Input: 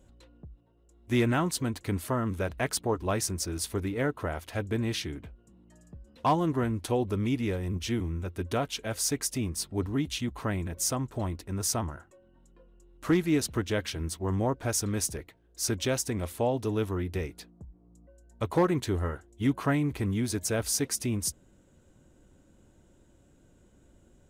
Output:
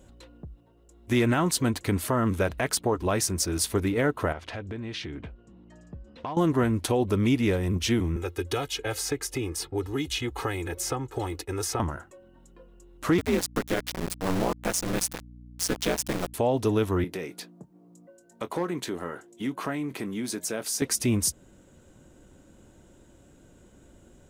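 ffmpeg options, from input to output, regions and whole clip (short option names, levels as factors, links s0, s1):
-filter_complex "[0:a]asettb=1/sr,asplit=3[s0][s1][s2];[s0]atrim=end=4.324[s3];[s1]atrim=start=4.32:end=6.37,asetpts=PTS-STARTPTS,afade=t=in:d=0.004:c=qsin,afade=t=out:st=2.046:d=0.004:c=qsin,lowpass=4300,acompressor=threshold=0.0126:ratio=8:attack=3.2:release=140:knee=1:detection=peak[s4];[s2]atrim=start=6.366[s5];[s3][s4]acrossfade=d=0.004:c1=hsin:c2=qsin[s6];[s6][s5]acrossfade=d=0.004:c1=qsin:c2=hsin,asettb=1/sr,asplit=3[s7][s8][s9];[s7]atrim=end=8.164[s10];[s8]atrim=start=8.16:end=11.8,asetpts=PTS-STARTPTS,afade=t=in:d=0.004:c=qsin,afade=t=out:st=3.636:d=0.004:c=qsin,agate=range=0.0224:threshold=0.00501:ratio=3:release=100:detection=peak,aecho=1:1:2.4:0.88,atrim=end_sample=160524,acrossover=split=230|2900[s11][s12][s13];[s11]acompressor=threshold=0.00891:ratio=4[s14];[s12]acompressor=threshold=0.0158:ratio=4[s15];[s13]acompressor=threshold=0.00794:ratio=4[s16];[s14][s15][s16]amix=inputs=3:normalize=0[s17];[s9]atrim=start=11.796[s18];[s10][s17]acrossfade=d=0.004:c1=hsin:c2=qsin[s19];[s19][s18]acrossfade=d=0.004:c1=qsin:c2=hsin,asettb=1/sr,asplit=3[s20][s21][s22];[s20]atrim=end=13.184[s23];[s21]atrim=start=13.18:end=16.34,asetpts=PTS-STARTPTS,afade=t=in:d=0.004:c=qsin,afade=t=out:st=3.156:d=0.004:c=qsin,aeval=exprs='val(0)*sin(2*PI*91*n/s)':c=same,aeval=exprs='val(0)*gte(abs(val(0)),0.0224)':c=same,aeval=exprs='val(0)+0.00316*(sin(2*PI*60*n/s)+sin(2*PI*2*60*n/s)/2+sin(2*PI*3*60*n/s)/3+sin(2*PI*4*60*n/s)/4+sin(2*PI*5*60*n/s)/5)':c=same[s24];[s22]atrim=start=16.336[s25];[s23][s24]acrossfade=d=0.004:c1=hsin:c2=qsin[s26];[s26][s25]acrossfade=d=0.004:c1=qsin:c2=hsin,asettb=1/sr,asplit=3[s27][s28][s29];[s27]atrim=end=17.044[s30];[s28]atrim=start=17.04:end=20.82,asetpts=PTS-STARTPTS,afade=t=in:d=0.004:c=qsin,afade=t=out:st=3.776:d=0.004:c=qsin,highpass=f=160:w=0.5412,highpass=f=160:w=1.3066,acompressor=threshold=0.00891:ratio=2:attack=3.2:release=140:knee=1:detection=peak,asplit=2[s31][s32];[s32]adelay=23,volume=0.2[s33];[s31][s33]amix=inputs=2:normalize=0,atrim=end_sample=166698[s34];[s29]atrim=start=20.816[s35];[s30][s34]acrossfade=d=0.004:c1=hsin:c2=qsin[s36];[s36][s35]acrossfade=d=0.004:c1=qsin:c2=hsin,lowshelf=f=160:g=-4,alimiter=limit=0.0794:level=0:latency=1:release=146,volume=2.37"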